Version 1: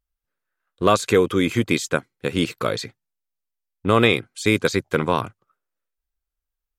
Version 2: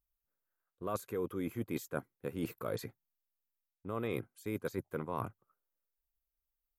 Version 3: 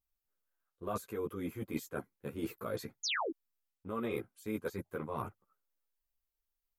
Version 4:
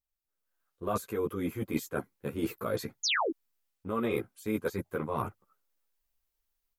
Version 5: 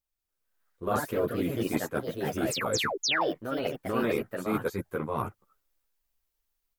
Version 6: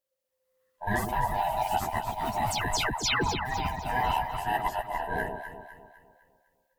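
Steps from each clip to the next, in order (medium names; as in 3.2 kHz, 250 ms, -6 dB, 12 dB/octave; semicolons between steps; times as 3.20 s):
FFT filter 1 kHz 0 dB, 3.8 kHz -14 dB, 8.5 kHz -8 dB, 12 kHz +9 dB; reverse; compression 10:1, threshold -26 dBFS, peak gain reduction 15 dB; reverse; trim -7 dB
painted sound fall, 3.03–3.31 s, 270–7200 Hz -34 dBFS; three-phase chorus; trim +2.5 dB
level rider gain up to 10 dB; trim -4 dB
ever faster or slower copies 180 ms, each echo +3 st, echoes 2; trim +1.5 dB
split-band scrambler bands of 500 Hz; echo whose repeats swap between lows and highs 126 ms, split 950 Hz, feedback 65%, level -5 dB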